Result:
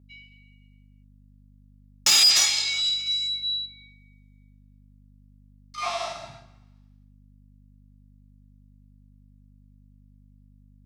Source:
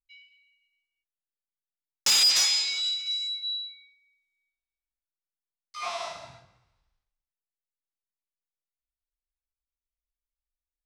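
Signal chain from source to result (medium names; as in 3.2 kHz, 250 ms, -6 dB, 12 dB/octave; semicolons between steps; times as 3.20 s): 3.65–5.78 s: compression, threshold -46 dBFS, peak gain reduction 8 dB; hum 50 Hz, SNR 24 dB; comb of notches 500 Hz; trim +5 dB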